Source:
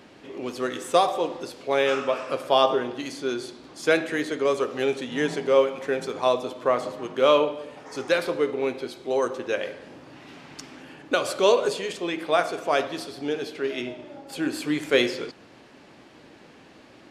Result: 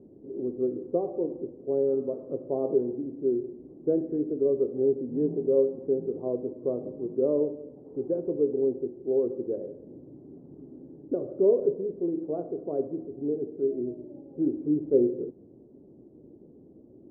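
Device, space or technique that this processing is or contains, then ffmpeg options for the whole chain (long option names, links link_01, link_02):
under water: -af "lowpass=frequency=440:width=0.5412,lowpass=frequency=440:width=1.3066,equalizer=frequency=380:width_type=o:width=0.33:gain=4.5"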